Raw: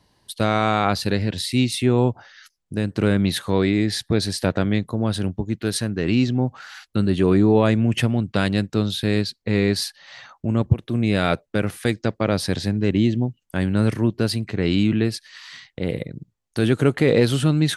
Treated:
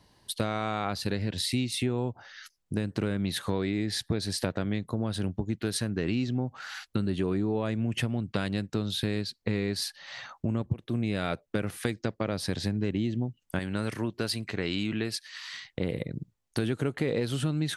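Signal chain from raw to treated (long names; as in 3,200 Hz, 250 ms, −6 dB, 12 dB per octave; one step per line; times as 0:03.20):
0:13.59–0:15.65: low-shelf EQ 440 Hz −10 dB
downward compressor 5 to 1, threshold −26 dBFS, peak gain reduction 14.5 dB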